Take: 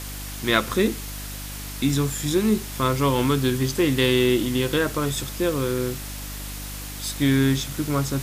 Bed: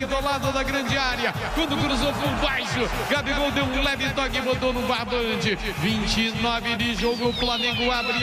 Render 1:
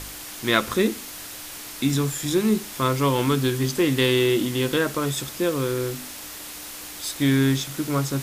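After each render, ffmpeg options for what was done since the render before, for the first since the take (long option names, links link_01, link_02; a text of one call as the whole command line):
ffmpeg -i in.wav -af "bandreject=frequency=50:width_type=h:width=4,bandreject=frequency=100:width_type=h:width=4,bandreject=frequency=150:width_type=h:width=4,bandreject=frequency=200:width_type=h:width=4,bandreject=frequency=250:width_type=h:width=4" out.wav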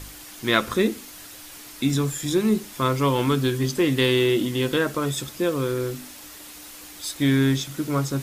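ffmpeg -i in.wav -af "afftdn=noise_reduction=6:noise_floor=-38" out.wav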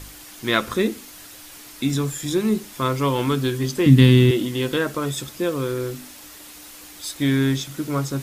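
ffmpeg -i in.wav -filter_complex "[0:a]asettb=1/sr,asplit=3[link_01][link_02][link_03];[link_01]atrim=end=3.864[link_04];[link_02]atrim=start=3.86:end=4.31,asetpts=PTS-STARTPTS,afade=type=in:duration=0.004:curve=qsin,afade=type=out:start_time=0.446:duration=0.004:curve=qsin,lowshelf=frequency=300:width_type=q:width=1.5:gain=13[link_05];[link_03]atrim=start=4.306[link_06];[link_04][link_05]acrossfade=duration=0.004:curve1=hsin:curve2=qsin[link_07];[link_07][link_06]acrossfade=duration=0.004:curve1=qsin:curve2=hsin" out.wav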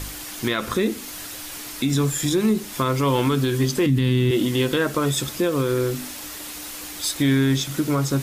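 ffmpeg -i in.wav -filter_complex "[0:a]asplit=2[link_01][link_02];[link_02]acompressor=threshold=-28dB:ratio=6,volume=2dB[link_03];[link_01][link_03]amix=inputs=2:normalize=0,alimiter=limit=-11.5dB:level=0:latency=1:release=62" out.wav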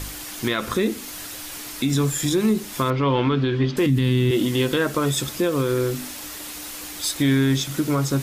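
ffmpeg -i in.wav -filter_complex "[0:a]asettb=1/sr,asplit=3[link_01][link_02][link_03];[link_01]atrim=end=2.904[link_04];[link_02]atrim=start=2.9:end=3.77,asetpts=PTS-STARTPTS,afade=type=in:duration=0.004:curve=qsin,afade=type=out:start_time=0.866:duration=0.004:curve=qsin,lowpass=frequency=3800:width=0.5412,lowpass=frequency=3800:width=1.3066[link_05];[link_03]atrim=start=3.766[link_06];[link_04][link_05]acrossfade=duration=0.004:curve1=hsin:curve2=qsin[link_07];[link_07][link_06]acrossfade=duration=0.004:curve1=qsin:curve2=hsin" out.wav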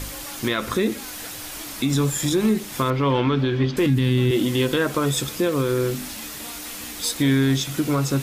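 ffmpeg -i in.wav -i bed.wav -filter_complex "[1:a]volume=-19.5dB[link_01];[0:a][link_01]amix=inputs=2:normalize=0" out.wav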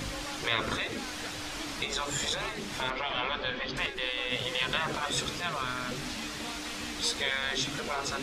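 ffmpeg -i in.wav -af "lowpass=5200,afftfilt=real='re*lt(hypot(re,im),0.2)':imag='im*lt(hypot(re,im),0.2)':win_size=1024:overlap=0.75" out.wav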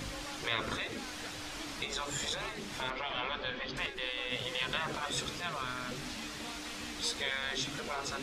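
ffmpeg -i in.wav -af "volume=-4.5dB" out.wav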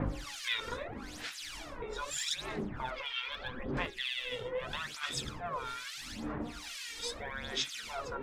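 ffmpeg -i in.wav -filter_complex "[0:a]acrossover=split=1600[link_01][link_02];[link_01]aeval=exprs='val(0)*(1-1/2+1/2*cos(2*PI*1.1*n/s))':channel_layout=same[link_03];[link_02]aeval=exprs='val(0)*(1-1/2-1/2*cos(2*PI*1.1*n/s))':channel_layout=same[link_04];[link_03][link_04]amix=inputs=2:normalize=0,aphaser=in_gain=1:out_gain=1:delay=2.2:decay=0.68:speed=0.79:type=sinusoidal" out.wav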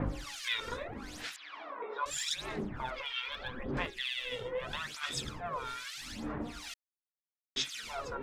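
ffmpeg -i in.wav -filter_complex "[0:a]asettb=1/sr,asplit=3[link_01][link_02][link_03];[link_01]atrim=end=1.364[link_04];[link_02]atrim=start=1.36:end=2.06,asetpts=PTS-STARTPTS,afade=type=in:duration=0.004:curve=qsin,afade=type=out:start_time=0.696:duration=0.004:curve=qsin,highpass=frequency=290:width=0.5412,highpass=frequency=290:width=1.3066,equalizer=frequency=330:width_type=q:width=4:gain=-4,equalizer=frequency=680:width_type=q:width=4:gain=4,equalizer=frequency=1100:width_type=q:width=4:gain=9,equalizer=frequency=2800:width_type=q:width=4:gain=-5,lowpass=frequency=3100:width=0.5412,lowpass=frequency=3100:width=1.3066[link_05];[link_03]atrim=start=2.056[link_06];[link_04][link_05]acrossfade=duration=0.004:curve1=hsin:curve2=qsin[link_07];[link_07][link_06]acrossfade=duration=0.004:curve1=qsin:curve2=hsin,asplit=3[link_08][link_09][link_10];[link_08]atrim=end=6.74,asetpts=PTS-STARTPTS,afade=type=out:start_time=6.736:duration=0.004:curve=hsin[link_11];[link_09]atrim=start=6.74:end=7.56,asetpts=PTS-STARTPTS,volume=0[link_12];[link_10]atrim=start=7.56,asetpts=PTS-STARTPTS,afade=type=in:duration=0.004:curve=hsin[link_13];[link_11][link_12][link_13]concat=n=3:v=0:a=1" out.wav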